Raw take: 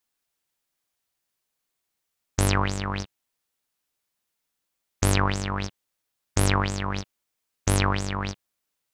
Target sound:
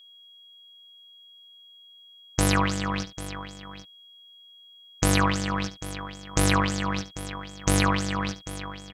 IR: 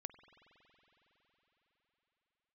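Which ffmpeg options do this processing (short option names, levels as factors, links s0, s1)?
-af "aecho=1:1:6.2:0.65,aecho=1:1:72|794:0.2|0.2,aeval=exprs='val(0)+0.00355*sin(2*PI*3300*n/s)':c=same"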